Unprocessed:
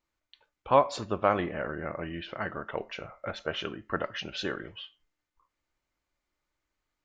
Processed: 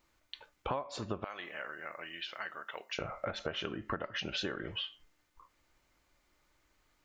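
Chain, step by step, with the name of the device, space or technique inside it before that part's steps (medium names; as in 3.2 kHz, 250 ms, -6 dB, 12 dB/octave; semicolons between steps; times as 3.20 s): 1.24–2.99 s: differentiator; serial compression, peaks first (compression 6:1, threshold -41 dBFS, peak gain reduction 23.5 dB; compression 1.5:1, threshold -51 dBFS, peak gain reduction 6 dB); trim +11 dB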